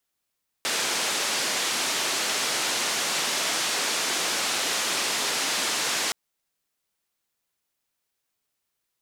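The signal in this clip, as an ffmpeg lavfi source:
-f lavfi -i "anoisesrc=c=white:d=5.47:r=44100:seed=1,highpass=f=250,lowpass=f=6800,volume=-16.6dB"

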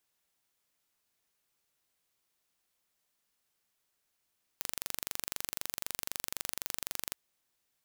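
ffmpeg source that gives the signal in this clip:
-f lavfi -i "aevalsrc='0.422*eq(mod(n,1845),0)':d=2.53:s=44100"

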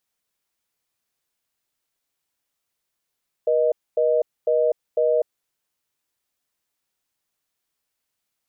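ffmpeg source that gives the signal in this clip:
-f lavfi -i "aevalsrc='0.112*(sin(2*PI*480*t)+sin(2*PI*620*t))*clip(min(mod(t,0.5),0.25-mod(t,0.5))/0.005,0,1)':d=1.98:s=44100"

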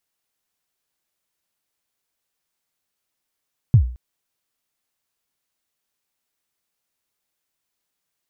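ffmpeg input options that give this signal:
-f lavfi -i "aevalsrc='0.562*pow(10,-3*t/0.43)*sin(2*PI*(140*0.089/log(61/140)*(exp(log(61/140)*min(t,0.089)/0.089)-1)+61*max(t-0.089,0)))':d=0.22:s=44100"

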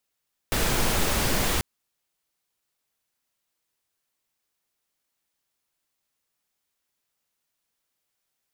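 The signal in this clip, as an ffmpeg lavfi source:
-f lavfi -i "anoisesrc=c=pink:a=0.343:d=1.09:r=44100:seed=1"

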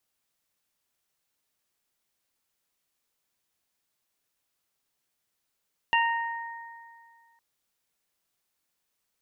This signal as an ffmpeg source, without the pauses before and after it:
-f lavfi -i "aevalsrc='0.0841*pow(10,-3*t/2.07)*sin(2*PI*927*t)+0.0668*pow(10,-3*t/2)*sin(2*PI*1854*t)+0.0668*pow(10,-3*t/0.58)*sin(2*PI*2781*t)':d=1.46:s=44100"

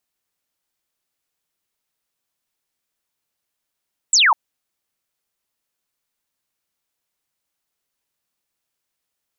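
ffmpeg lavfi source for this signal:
-f lavfi -i "aevalsrc='0.299*clip(t/0.002,0,1)*clip((0.2-t)/0.002,0,1)*sin(2*PI*8200*0.2/log(830/8200)*(exp(log(830/8200)*t/0.2)-1))':d=0.2:s=44100"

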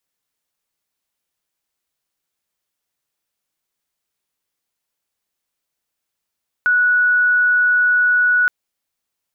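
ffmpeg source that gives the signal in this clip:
-f lavfi -i "aevalsrc='0.266*sin(2*PI*1470*t)':d=1.82:s=44100"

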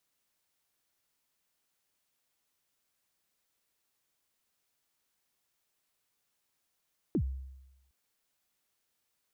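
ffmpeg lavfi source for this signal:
-f lavfi -i "aevalsrc='0.0631*pow(10,-3*t/0.98)*sin(2*PI*(390*0.075/log(66/390)*(exp(log(66/390)*min(t,0.075)/0.075)-1)+66*max(t-0.075,0)))':d=0.76:s=44100"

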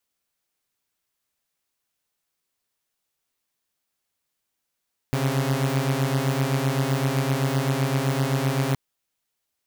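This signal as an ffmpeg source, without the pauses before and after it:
-f lavfi -i "aevalsrc='0.0841*((2*mod(130.81*t,1)-1)+(2*mod(138.59*t,1)-1))':d=3.62:s=44100"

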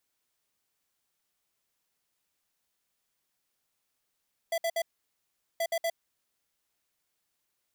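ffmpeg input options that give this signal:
-f lavfi -i "aevalsrc='0.0355*(2*lt(mod(667*t,1),0.5)-1)*clip(min(mod(mod(t,1.08),0.12),0.06-mod(mod(t,1.08),0.12))/0.005,0,1)*lt(mod(t,1.08),0.36)':d=2.16:s=44100"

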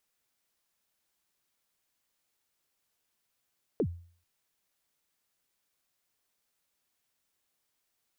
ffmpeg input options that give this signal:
-f lavfi -i "aevalsrc='0.0794*pow(10,-3*t/0.47)*sin(2*PI*(520*0.069/log(86/520)*(exp(log(86/520)*min(t,0.069)/0.069)-1)+86*max(t-0.069,0)))':d=0.44:s=44100"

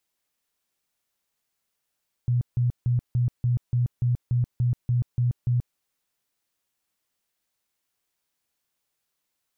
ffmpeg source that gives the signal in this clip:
-f lavfi -i "aevalsrc='0.112*sin(2*PI*122*mod(t,0.29))*lt(mod(t,0.29),16/122)':d=3.48:s=44100"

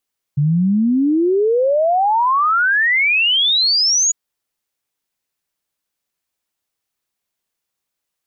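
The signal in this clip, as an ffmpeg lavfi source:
-f lavfi -i "aevalsrc='0.251*clip(min(t,3.75-t)/0.01,0,1)*sin(2*PI*140*3.75/log(6900/140)*(exp(log(6900/140)*t/3.75)-1))':d=3.75:s=44100"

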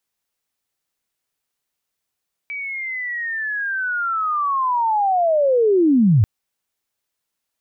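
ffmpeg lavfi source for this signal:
-f lavfi -i "aevalsrc='pow(10,(-25.5+15.5*t/3.74)/20)*sin(2*PI*(2300*t-2207*t*t/(2*3.74)))':d=3.74:s=44100"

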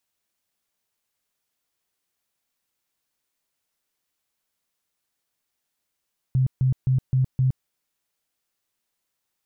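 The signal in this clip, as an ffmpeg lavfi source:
-f lavfi -i "aevalsrc='0.15*sin(2*PI*130*mod(t,0.26))*lt(mod(t,0.26),15/130)':d=1.3:s=44100"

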